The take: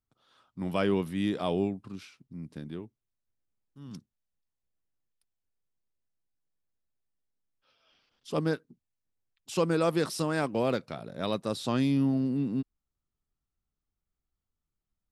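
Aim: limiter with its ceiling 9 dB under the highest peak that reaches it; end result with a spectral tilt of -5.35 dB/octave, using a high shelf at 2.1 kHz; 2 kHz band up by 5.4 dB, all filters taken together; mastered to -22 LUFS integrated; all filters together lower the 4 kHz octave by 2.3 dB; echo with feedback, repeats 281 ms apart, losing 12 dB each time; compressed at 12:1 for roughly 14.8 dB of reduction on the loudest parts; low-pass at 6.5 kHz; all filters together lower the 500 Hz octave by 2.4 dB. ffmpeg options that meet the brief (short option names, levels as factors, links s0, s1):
-af "lowpass=6500,equalizer=f=500:t=o:g=-3.5,equalizer=f=2000:t=o:g=8,highshelf=f=2100:g=3,equalizer=f=4000:t=o:g=-8,acompressor=threshold=0.0126:ratio=12,alimiter=level_in=3.35:limit=0.0631:level=0:latency=1,volume=0.299,aecho=1:1:281|562|843:0.251|0.0628|0.0157,volume=15"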